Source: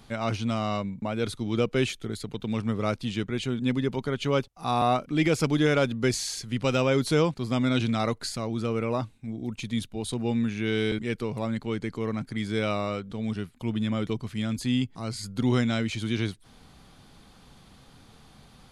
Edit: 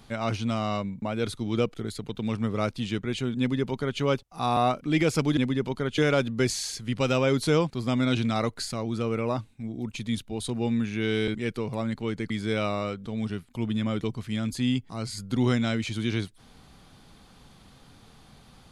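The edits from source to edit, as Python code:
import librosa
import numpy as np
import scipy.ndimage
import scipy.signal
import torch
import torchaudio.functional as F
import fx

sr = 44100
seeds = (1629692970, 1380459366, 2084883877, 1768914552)

y = fx.edit(x, sr, fx.cut(start_s=1.74, length_s=0.25),
    fx.duplicate(start_s=3.64, length_s=0.61, to_s=5.62),
    fx.cut(start_s=11.94, length_s=0.42), tone=tone)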